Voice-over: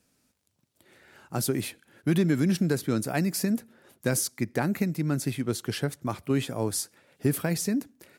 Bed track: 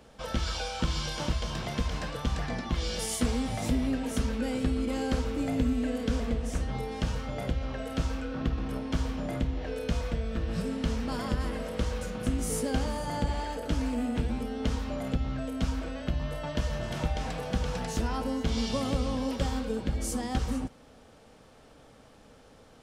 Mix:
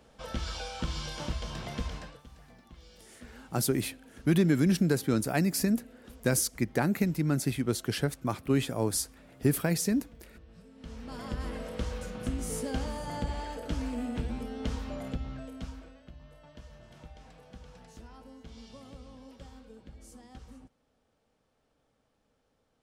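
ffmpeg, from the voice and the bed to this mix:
ffmpeg -i stem1.wav -i stem2.wav -filter_complex "[0:a]adelay=2200,volume=-0.5dB[link_01];[1:a]volume=14dB,afade=type=out:start_time=1.86:duration=0.36:silence=0.125893,afade=type=in:start_time=10.74:duration=0.77:silence=0.11885,afade=type=out:start_time=14.92:duration=1.1:silence=0.16788[link_02];[link_01][link_02]amix=inputs=2:normalize=0" out.wav

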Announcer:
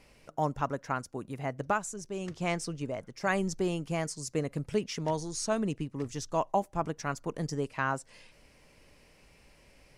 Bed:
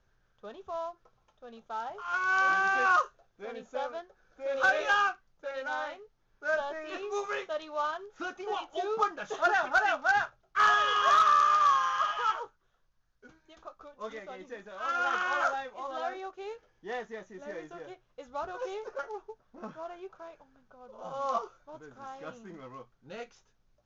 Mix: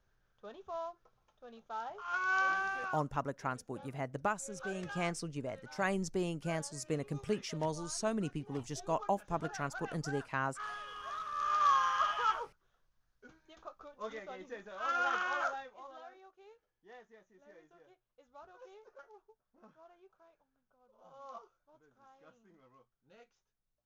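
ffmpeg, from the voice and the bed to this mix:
ffmpeg -i stem1.wav -i stem2.wav -filter_complex "[0:a]adelay=2550,volume=-4.5dB[link_01];[1:a]volume=12.5dB,afade=type=out:start_time=2.38:duration=0.59:silence=0.177828,afade=type=in:start_time=11.32:duration=0.44:silence=0.141254,afade=type=out:start_time=14.97:duration=1.09:silence=0.16788[link_02];[link_01][link_02]amix=inputs=2:normalize=0" out.wav

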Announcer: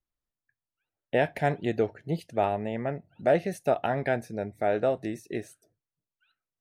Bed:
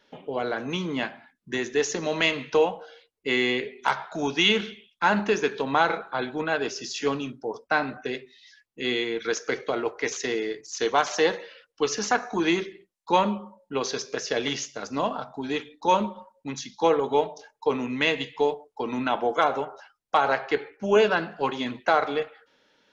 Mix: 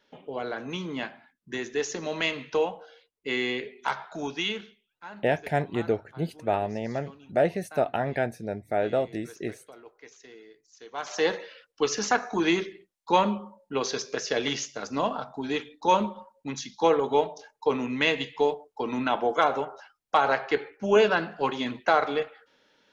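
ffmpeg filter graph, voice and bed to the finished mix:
ffmpeg -i stem1.wav -i stem2.wav -filter_complex "[0:a]adelay=4100,volume=0dB[link_01];[1:a]volume=16.5dB,afade=type=out:start_time=4.16:duration=0.64:silence=0.141254,afade=type=in:start_time=10.91:duration=0.44:silence=0.0891251[link_02];[link_01][link_02]amix=inputs=2:normalize=0" out.wav

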